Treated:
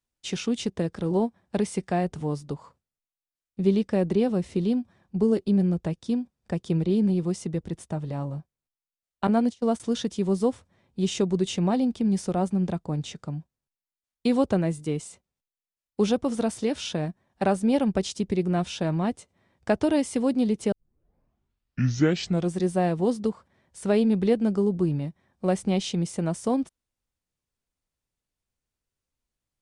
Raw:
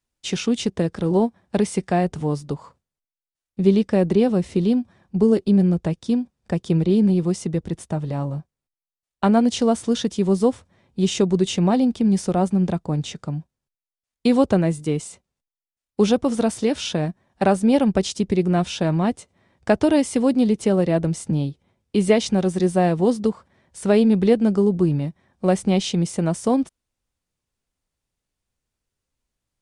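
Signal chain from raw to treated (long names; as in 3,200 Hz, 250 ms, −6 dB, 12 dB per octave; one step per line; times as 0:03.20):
0:09.27–0:09.80: noise gate −19 dBFS, range −26 dB
0:20.72: tape start 1.84 s
level −5.5 dB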